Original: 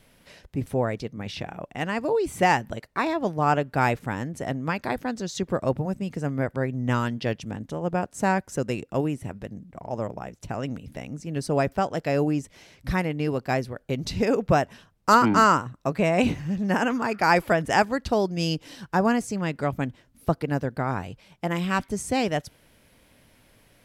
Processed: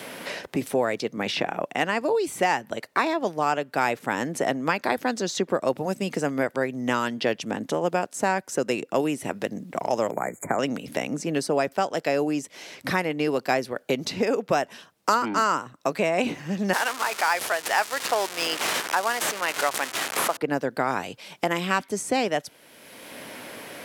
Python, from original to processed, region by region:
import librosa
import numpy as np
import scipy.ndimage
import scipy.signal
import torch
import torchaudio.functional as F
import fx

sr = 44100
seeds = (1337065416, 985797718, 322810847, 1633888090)

y = fx.chain(x, sr, fx.brickwall_bandstop(low_hz=2400.0, high_hz=6600.0),
    fx.band_squash(depth_pct=40), at=(10.11, 10.59))
y = fx.chain(y, sr, fx.crossing_spikes(level_db=-20.0),
    fx.highpass(hz=810.0, slope=12),
    fx.resample_linear(factor=2), at=(16.73, 20.37))
y = fx.rider(y, sr, range_db=5, speed_s=0.5)
y = scipy.signal.sosfilt(scipy.signal.butter(2, 290.0, 'highpass', fs=sr, output='sos'), y)
y = fx.band_squash(y, sr, depth_pct=70)
y = y * 10.0 ** (2.0 / 20.0)